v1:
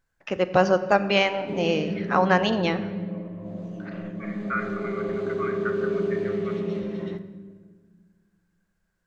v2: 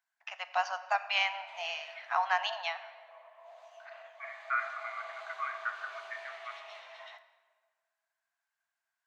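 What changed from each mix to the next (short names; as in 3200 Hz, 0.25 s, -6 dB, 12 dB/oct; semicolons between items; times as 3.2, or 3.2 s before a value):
first voice -5.0 dB; master: add rippled Chebyshev high-pass 660 Hz, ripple 3 dB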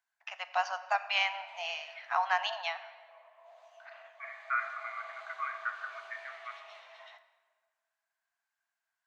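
background -3.5 dB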